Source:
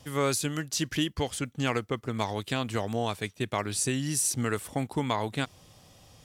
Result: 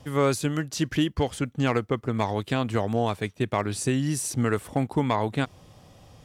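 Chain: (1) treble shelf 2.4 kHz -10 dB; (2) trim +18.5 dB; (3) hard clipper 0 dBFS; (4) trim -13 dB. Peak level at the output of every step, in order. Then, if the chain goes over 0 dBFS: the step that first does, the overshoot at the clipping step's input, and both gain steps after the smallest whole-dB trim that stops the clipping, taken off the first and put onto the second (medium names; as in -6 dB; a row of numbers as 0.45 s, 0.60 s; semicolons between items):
-15.0 dBFS, +3.5 dBFS, 0.0 dBFS, -13.0 dBFS; step 2, 3.5 dB; step 2 +14.5 dB, step 4 -9 dB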